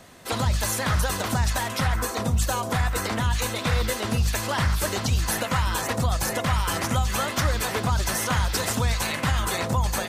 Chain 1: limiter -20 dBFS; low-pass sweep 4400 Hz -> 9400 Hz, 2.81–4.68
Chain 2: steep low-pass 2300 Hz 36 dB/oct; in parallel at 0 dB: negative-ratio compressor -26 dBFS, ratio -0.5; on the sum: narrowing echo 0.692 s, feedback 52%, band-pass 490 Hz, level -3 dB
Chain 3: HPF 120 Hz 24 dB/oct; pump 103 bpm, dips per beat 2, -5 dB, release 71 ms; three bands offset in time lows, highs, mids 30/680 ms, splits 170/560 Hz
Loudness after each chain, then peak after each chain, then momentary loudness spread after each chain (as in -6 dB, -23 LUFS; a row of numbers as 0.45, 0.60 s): -28.0, -20.5, -27.5 LUFS; -15.5, -6.5, -12.5 dBFS; 1, 1, 3 LU